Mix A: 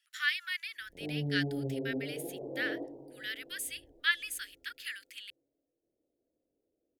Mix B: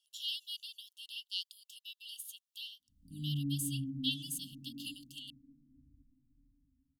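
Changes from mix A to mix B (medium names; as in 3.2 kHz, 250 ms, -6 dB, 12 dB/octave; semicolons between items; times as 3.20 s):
background: entry +2.10 s; master: add brick-wall FIR band-stop 290–2700 Hz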